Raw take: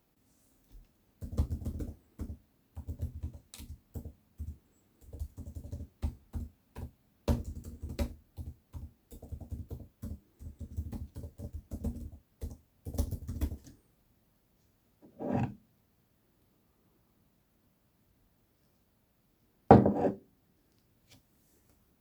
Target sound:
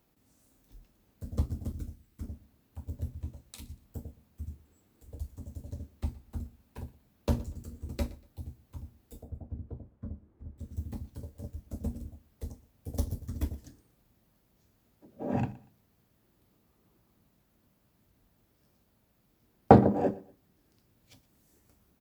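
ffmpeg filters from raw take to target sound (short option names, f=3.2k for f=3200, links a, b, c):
-filter_complex "[0:a]asettb=1/sr,asplit=3[a][b][c];[a]atrim=end=1.724[d];[b]atrim=start=1.72:end=2.23,asetpts=PTS-STARTPTS,afade=t=in:d=0.004:c=qsin,afade=t=out:st=0.506:d=0.004:c=qsin,equalizer=f=550:w=0.61:g=-12.5[e];[c]atrim=start=2.226[f];[d][e]acrossfade=d=0.004:c1=hsin:c2=qsin[g];[g][f]acrossfade=d=0.004:c1=qsin:c2=hsin,asettb=1/sr,asplit=3[h][i][j];[h]atrim=end=9.234[k];[i]atrim=start=9.23:end=10.58,asetpts=PTS-STARTPTS,afade=t=in:d=0.004:c=qsin,afade=t=out:st=1.346:d=0.004:c=qsin,lowpass=1.3k[l];[j]atrim=start=10.576[m];[k][l]acrossfade=d=0.004:c1=hsin:c2=qsin[n];[n][m]acrossfade=d=0.004:c1=qsin:c2=hsin,aecho=1:1:119|238:0.1|0.028,volume=1.5dB"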